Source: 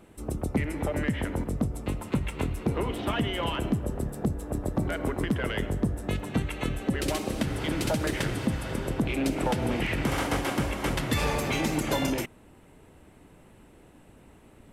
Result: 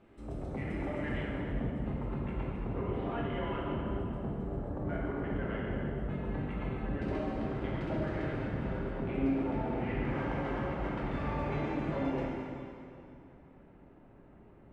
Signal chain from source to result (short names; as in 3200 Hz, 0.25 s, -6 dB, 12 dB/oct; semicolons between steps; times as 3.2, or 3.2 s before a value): LPF 3300 Hz 12 dB/oct, from 1.21 s 1600 Hz; limiter -23 dBFS, peak gain reduction 8.5 dB; plate-style reverb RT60 2.6 s, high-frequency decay 0.9×, DRR -5 dB; gain -9 dB